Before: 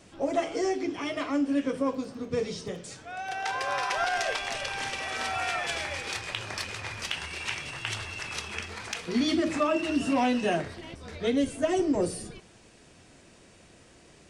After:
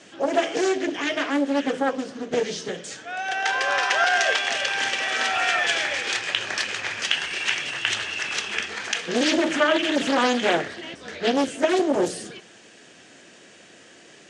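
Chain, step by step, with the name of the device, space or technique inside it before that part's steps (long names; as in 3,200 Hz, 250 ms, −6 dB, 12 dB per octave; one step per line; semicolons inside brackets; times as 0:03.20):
full-range speaker at full volume (highs frequency-modulated by the lows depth 0.89 ms; loudspeaker in its box 230–8,800 Hz, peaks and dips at 1,000 Hz −4 dB, 1,700 Hz +7 dB, 3,100 Hz +6 dB, 6,600 Hz +4 dB)
level +6 dB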